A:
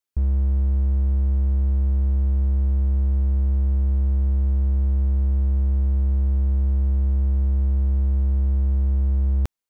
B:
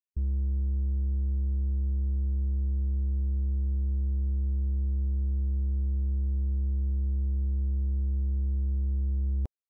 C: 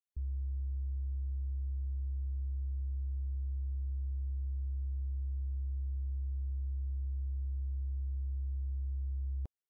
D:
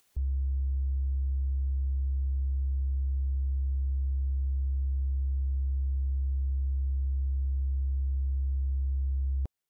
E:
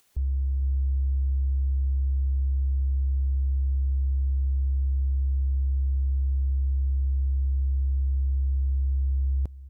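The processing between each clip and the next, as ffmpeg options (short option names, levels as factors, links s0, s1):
-af "afftdn=nr=13:nf=-33,volume=0.398"
-af "asoftclip=type=tanh:threshold=0.0473,volume=0.531"
-af "acompressor=mode=upward:threshold=0.00112:ratio=2.5,volume=2.24"
-af "aecho=1:1:460:0.141,volume=1.5"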